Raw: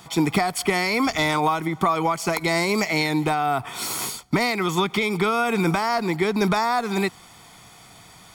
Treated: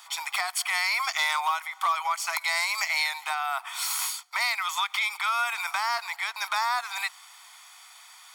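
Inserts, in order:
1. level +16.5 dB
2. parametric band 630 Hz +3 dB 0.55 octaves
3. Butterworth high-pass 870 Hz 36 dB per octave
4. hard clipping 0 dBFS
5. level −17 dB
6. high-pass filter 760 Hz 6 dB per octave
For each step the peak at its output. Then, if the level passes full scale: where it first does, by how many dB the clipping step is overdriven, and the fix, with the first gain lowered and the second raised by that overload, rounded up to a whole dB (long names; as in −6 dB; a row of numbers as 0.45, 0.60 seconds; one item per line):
+9.0, +9.5, +5.5, 0.0, −17.0, −15.0 dBFS
step 1, 5.5 dB
step 1 +10.5 dB, step 5 −11 dB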